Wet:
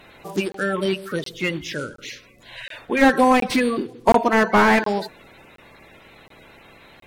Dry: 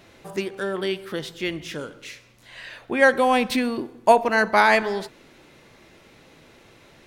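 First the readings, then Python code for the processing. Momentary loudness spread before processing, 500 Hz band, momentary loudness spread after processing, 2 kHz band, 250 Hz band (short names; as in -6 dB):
22 LU, +1.0 dB, 20 LU, 0.0 dB, +6.0 dB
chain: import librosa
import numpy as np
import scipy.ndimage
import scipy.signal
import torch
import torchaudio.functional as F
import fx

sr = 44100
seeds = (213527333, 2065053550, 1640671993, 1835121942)

y = fx.spec_quant(x, sr, step_db=30)
y = fx.buffer_crackle(y, sr, first_s=0.52, period_s=0.72, block=1024, kind='zero')
y = fx.slew_limit(y, sr, full_power_hz=160.0)
y = F.gain(torch.from_numpy(y), 4.5).numpy()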